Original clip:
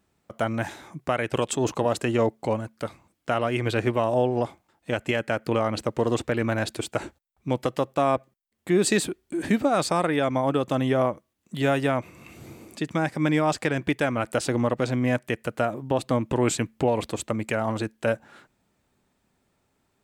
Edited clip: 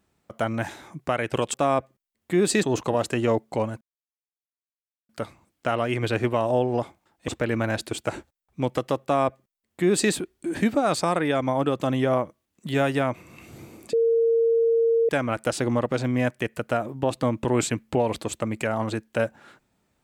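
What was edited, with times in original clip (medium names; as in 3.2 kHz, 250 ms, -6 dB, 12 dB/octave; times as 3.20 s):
2.72 s: insert silence 1.28 s
4.91–6.16 s: delete
7.91–9.00 s: copy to 1.54 s
12.81–13.97 s: bleep 459 Hz -17 dBFS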